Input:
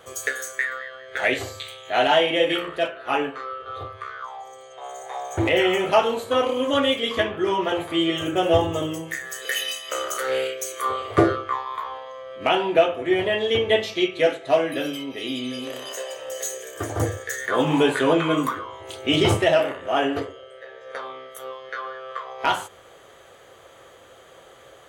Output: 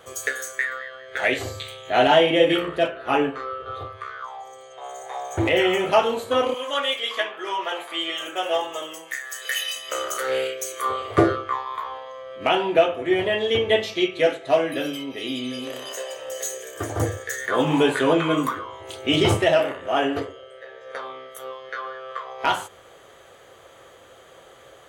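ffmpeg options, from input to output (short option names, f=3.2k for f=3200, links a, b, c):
-filter_complex "[0:a]asettb=1/sr,asplit=3[a][b][c];[a]atrim=end=1.454[d];[b]atrim=start=1.45:end=3.75,asetpts=PTS-STARTPTS,afade=t=in:d=0.004:c=qsin,afade=t=out:st=2.296:d=0.004:c=qsin,lowshelf=f=430:g=8[e];[c]atrim=start=3.746[f];[d][e]acrossfade=d=0.004:c1=hsin:c2=qsin[g];[g][f]acrossfade=d=0.004:c1=qsin:c2=hsin,asettb=1/sr,asplit=3[h][i][j];[h]atrim=end=6.544[k];[i]atrim=start=6.54:end=9.76,asetpts=PTS-STARTPTS,afade=t=in:d=0.004:c=qsin,afade=t=out:st=3.216:d=0.004:c=qsin,highpass=730[l];[j]atrim=start=9.756[m];[k][l]acrossfade=d=0.004:c1=hsin:c2=qsin[n];[n][m]acrossfade=d=0.004:c1=qsin:c2=hsin"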